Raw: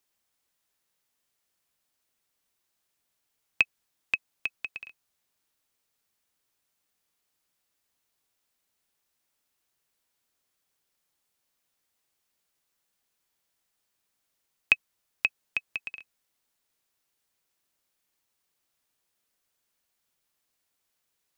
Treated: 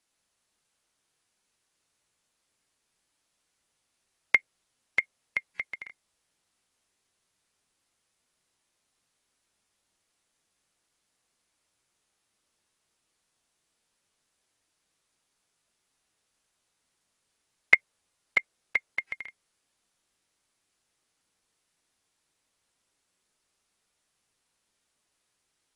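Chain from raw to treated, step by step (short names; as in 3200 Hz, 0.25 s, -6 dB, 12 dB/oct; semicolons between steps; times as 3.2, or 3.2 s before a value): varispeed -17%; dynamic EQ 540 Hz, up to +7 dB, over -58 dBFS, Q 2.8; gain +1.5 dB; AAC 32 kbps 24000 Hz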